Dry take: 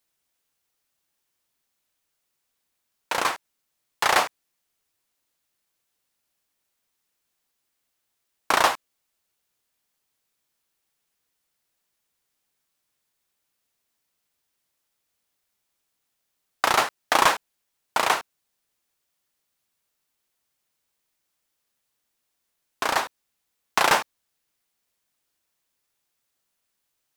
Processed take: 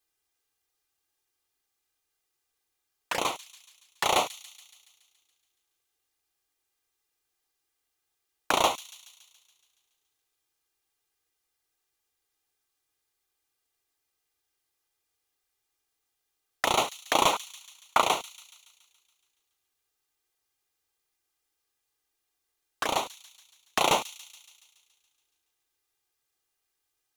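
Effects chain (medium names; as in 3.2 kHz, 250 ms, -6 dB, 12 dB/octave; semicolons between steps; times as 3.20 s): 17.33–18.02 s: peaking EQ 1.3 kHz +13 dB 0.88 oct; touch-sensitive flanger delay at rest 2.5 ms, full sweep at -22.5 dBFS; feedback echo behind a high-pass 141 ms, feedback 61%, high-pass 4 kHz, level -12 dB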